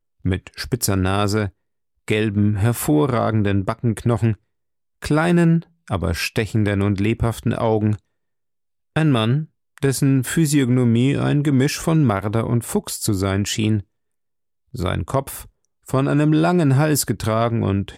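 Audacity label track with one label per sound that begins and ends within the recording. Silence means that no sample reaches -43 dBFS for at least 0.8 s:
8.960000	13.820000	sound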